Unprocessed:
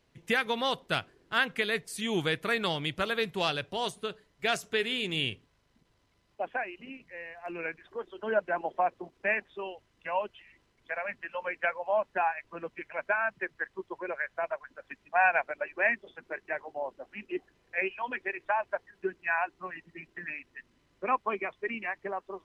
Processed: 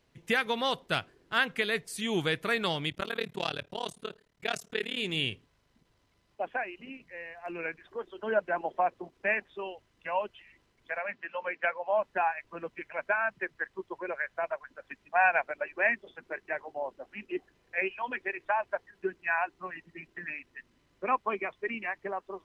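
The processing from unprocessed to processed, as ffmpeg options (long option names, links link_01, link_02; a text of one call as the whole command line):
ffmpeg -i in.wav -filter_complex "[0:a]asplit=3[link_01][link_02][link_03];[link_01]afade=type=out:start_time=2.89:duration=0.02[link_04];[link_02]tremolo=f=37:d=1,afade=type=in:start_time=2.89:duration=0.02,afade=type=out:start_time=4.96:duration=0.02[link_05];[link_03]afade=type=in:start_time=4.96:duration=0.02[link_06];[link_04][link_05][link_06]amix=inputs=3:normalize=0,asettb=1/sr,asplit=3[link_07][link_08][link_09];[link_07]atrim=end=11.004[link_10];[link_08]atrim=start=11:end=12,asetpts=PTS-STARTPTS,afade=type=in:duration=0.004:curve=qsin,afade=type=out:start_time=0.996:duration=0.004:curve=qsin,highpass=160,lowpass=5300[link_11];[link_09]atrim=start=11.996[link_12];[link_10][link_11]acrossfade=duration=0.004:curve1=hsin:curve2=qsin[link_13];[link_13][link_12]acrossfade=duration=0.004:curve1=qsin:curve2=hsin" out.wav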